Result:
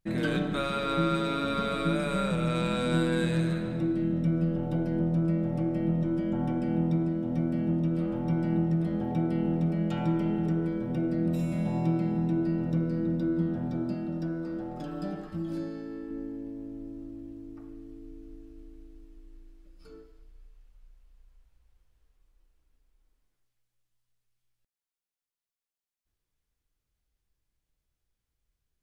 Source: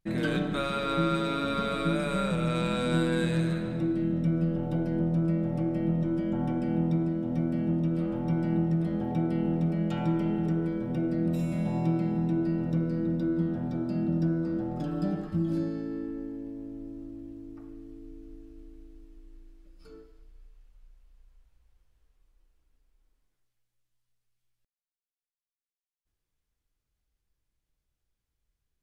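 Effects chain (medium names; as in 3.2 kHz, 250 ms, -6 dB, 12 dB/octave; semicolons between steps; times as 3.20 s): 13.94–16.11 s: peaking EQ 120 Hz -8 dB 2.9 oct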